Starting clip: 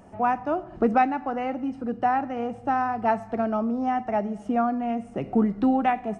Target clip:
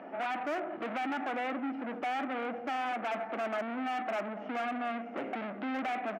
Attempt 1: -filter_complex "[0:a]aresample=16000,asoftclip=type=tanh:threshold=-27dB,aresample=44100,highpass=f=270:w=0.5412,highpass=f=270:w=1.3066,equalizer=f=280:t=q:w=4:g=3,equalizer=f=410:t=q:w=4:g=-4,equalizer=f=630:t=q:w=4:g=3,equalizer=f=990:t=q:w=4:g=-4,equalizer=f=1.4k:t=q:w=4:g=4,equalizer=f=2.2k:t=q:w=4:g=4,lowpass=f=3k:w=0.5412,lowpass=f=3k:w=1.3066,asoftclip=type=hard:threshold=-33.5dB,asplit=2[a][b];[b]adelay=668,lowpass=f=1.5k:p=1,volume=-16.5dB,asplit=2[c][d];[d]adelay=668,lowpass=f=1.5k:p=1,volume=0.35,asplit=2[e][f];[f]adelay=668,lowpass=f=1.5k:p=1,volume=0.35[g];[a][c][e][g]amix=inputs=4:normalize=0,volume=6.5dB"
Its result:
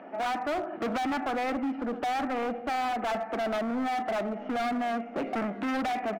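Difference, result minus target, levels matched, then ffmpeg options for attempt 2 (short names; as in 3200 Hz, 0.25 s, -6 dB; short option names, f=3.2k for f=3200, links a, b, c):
soft clip: distortion -5 dB
-filter_complex "[0:a]aresample=16000,asoftclip=type=tanh:threshold=-39dB,aresample=44100,highpass=f=270:w=0.5412,highpass=f=270:w=1.3066,equalizer=f=280:t=q:w=4:g=3,equalizer=f=410:t=q:w=4:g=-4,equalizer=f=630:t=q:w=4:g=3,equalizer=f=990:t=q:w=4:g=-4,equalizer=f=1.4k:t=q:w=4:g=4,equalizer=f=2.2k:t=q:w=4:g=4,lowpass=f=3k:w=0.5412,lowpass=f=3k:w=1.3066,asoftclip=type=hard:threshold=-33.5dB,asplit=2[a][b];[b]adelay=668,lowpass=f=1.5k:p=1,volume=-16.5dB,asplit=2[c][d];[d]adelay=668,lowpass=f=1.5k:p=1,volume=0.35,asplit=2[e][f];[f]adelay=668,lowpass=f=1.5k:p=1,volume=0.35[g];[a][c][e][g]amix=inputs=4:normalize=0,volume=6.5dB"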